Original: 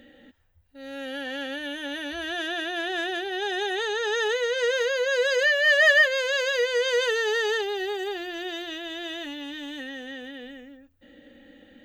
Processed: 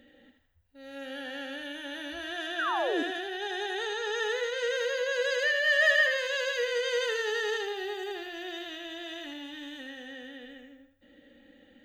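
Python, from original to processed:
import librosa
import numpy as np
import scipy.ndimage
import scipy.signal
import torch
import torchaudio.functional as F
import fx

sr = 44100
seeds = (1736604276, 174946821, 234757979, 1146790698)

y = fx.spec_paint(x, sr, seeds[0], shape='fall', start_s=2.58, length_s=0.45, low_hz=270.0, high_hz=1700.0, level_db=-24.0)
y = fx.echo_thinned(y, sr, ms=80, feedback_pct=38, hz=420.0, wet_db=-5.5)
y = y * 10.0 ** (-6.5 / 20.0)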